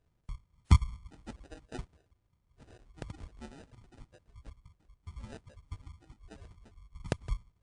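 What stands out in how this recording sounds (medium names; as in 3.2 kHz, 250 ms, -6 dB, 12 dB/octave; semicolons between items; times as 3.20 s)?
phasing stages 2, 2.2 Hz, lowest notch 310–1100 Hz; aliases and images of a low sample rate 1.1 kHz, jitter 0%; WMA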